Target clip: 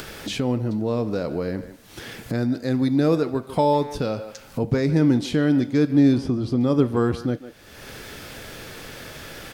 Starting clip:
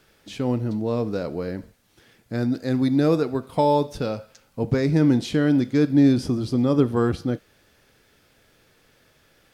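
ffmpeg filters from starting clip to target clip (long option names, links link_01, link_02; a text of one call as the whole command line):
ffmpeg -i in.wav -filter_complex "[0:a]asettb=1/sr,asplit=3[link_01][link_02][link_03];[link_01]atrim=end=6.184[link_04];[link_02]atrim=start=6.18:end=6.61,asetpts=PTS-STARTPTS,afade=type=in:duration=0.004:curve=qsin,afade=type=out:start_time=0.426:duration=0.004:curve=qsin,highshelf=frequency=5000:gain=-11.5[link_05];[link_03]atrim=start=6.606[link_06];[link_04][link_05]acrossfade=duration=0.004:curve1=hsin:curve2=qsin[link_07];[link_07][link_06]acrossfade=duration=0.004:curve1=qsin:curve2=hsin,asplit=2[link_08][link_09];[link_09]adelay=150,highpass=300,lowpass=3400,asoftclip=type=hard:threshold=-15.5dB,volume=-15dB[link_10];[link_08][link_10]amix=inputs=2:normalize=0,acompressor=mode=upward:threshold=-20dB:ratio=2.5" out.wav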